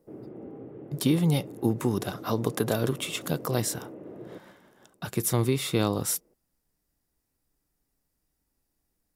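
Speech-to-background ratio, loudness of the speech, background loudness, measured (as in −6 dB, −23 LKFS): 15.5 dB, −28.0 LKFS, −43.5 LKFS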